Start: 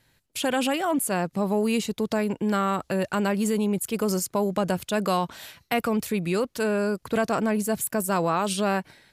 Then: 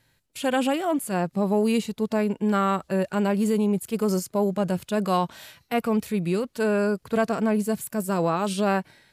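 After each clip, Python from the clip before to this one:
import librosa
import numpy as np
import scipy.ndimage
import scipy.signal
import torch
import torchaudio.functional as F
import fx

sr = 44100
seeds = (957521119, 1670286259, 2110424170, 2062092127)

y = fx.hpss(x, sr, part='percussive', gain_db=-9)
y = F.gain(torch.from_numpy(y), 2.0).numpy()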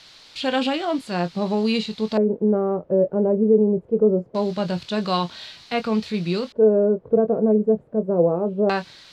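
y = fx.doubler(x, sr, ms=23.0, db=-10.0)
y = fx.quant_dither(y, sr, seeds[0], bits=8, dither='triangular')
y = fx.filter_lfo_lowpass(y, sr, shape='square', hz=0.23, low_hz=500.0, high_hz=4200.0, q=3.5)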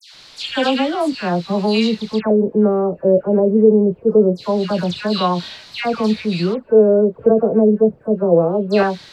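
y = fx.dispersion(x, sr, late='lows', ms=139.0, hz=2000.0)
y = F.gain(torch.from_numpy(y), 5.0).numpy()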